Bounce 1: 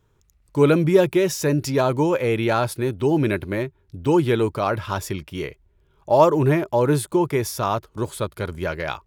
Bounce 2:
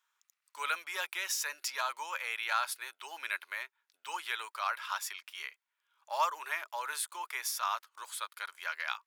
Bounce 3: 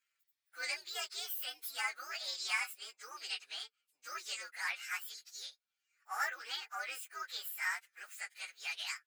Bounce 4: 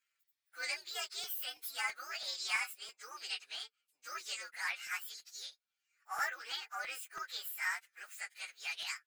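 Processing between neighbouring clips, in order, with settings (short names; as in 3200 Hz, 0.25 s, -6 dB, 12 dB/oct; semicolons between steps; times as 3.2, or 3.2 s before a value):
HPF 1100 Hz 24 dB/oct; gain -4.5 dB
inharmonic rescaling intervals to 129%; gain +1 dB
crackling interface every 0.33 s, samples 256, repeat, from 0.9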